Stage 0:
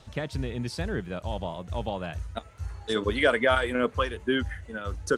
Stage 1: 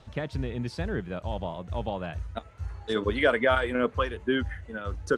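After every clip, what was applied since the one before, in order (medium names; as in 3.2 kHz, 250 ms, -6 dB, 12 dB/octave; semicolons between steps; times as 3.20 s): treble shelf 5.3 kHz -11.5 dB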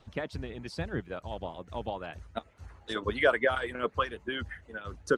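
harmonic-percussive split harmonic -15 dB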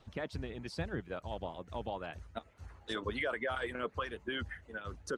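peak limiter -23.5 dBFS, peak gain reduction 11 dB; trim -2.5 dB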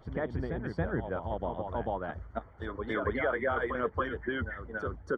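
Savitzky-Golay filter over 41 samples; reverse echo 278 ms -6 dB; trim +6 dB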